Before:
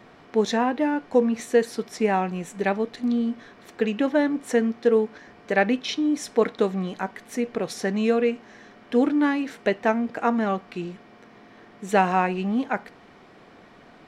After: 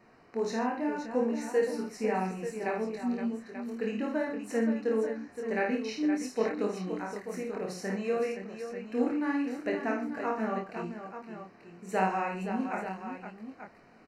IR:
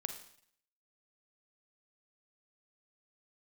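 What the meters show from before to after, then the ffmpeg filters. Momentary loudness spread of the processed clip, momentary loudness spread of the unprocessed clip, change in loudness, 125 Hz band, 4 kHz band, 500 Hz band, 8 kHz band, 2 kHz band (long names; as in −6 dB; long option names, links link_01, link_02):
11 LU, 9 LU, −8.0 dB, −8.0 dB, −12.0 dB, −7.5 dB, −8.0 dB, −8.0 dB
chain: -filter_complex "[0:a]asuperstop=centerf=3400:order=4:qfactor=3.1,flanger=delay=22.5:depth=5.4:speed=0.72,asplit=2[link_01][link_02];[link_02]aecho=0:1:53|124|520|887:0.596|0.188|0.376|0.316[link_03];[link_01][link_03]amix=inputs=2:normalize=0,volume=-7dB"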